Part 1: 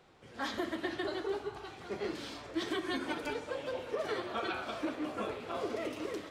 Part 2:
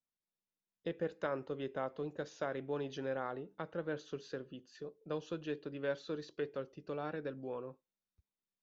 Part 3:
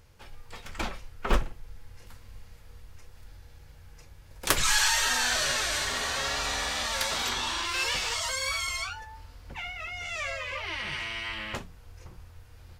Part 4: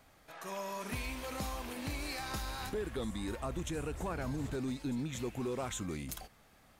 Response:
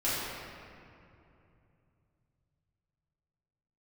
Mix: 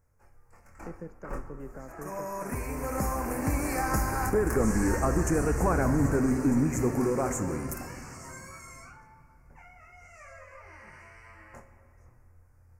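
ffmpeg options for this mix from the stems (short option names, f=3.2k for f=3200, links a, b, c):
-filter_complex "[0:a]alimiter=level_in=7.5dB:limit=-24dB:level=0:latency=1,volume=-7.5dB,lowpass=f=7.2k:t=q:w=4.9,adelay=1350,volume=-13dB[a];[1:a]acrossover=split=290|3000[b][c][d];[c]acompressor=threshold=-49dB:ratio=6[e];[b][e][d]amix=inputs=3:normalize=0,volume=2.5dB[f];[2:a]flanger=delay=22.5:depth=3.7:speed=0.38,volume=-10dB,asplit=2[g][h];[h]volume=-16.5dB[i];[3:a]dynaudnorm=f=160:g=17:m=9dB,adelay=1600,volume=2dB,asplit=2[j][k];[k]volume=-17dB[l];[4:a]atrim=start_sample=2205[m];[i][l]amix=inputs=2:normalize=0[n];[n][m]afir=irnorm=-1:irlink=0[o];[a][f][g][j][o]amix=inputs=5:normalize=0,asuperstop=centerf=3500:order=4:qfactor=0.77"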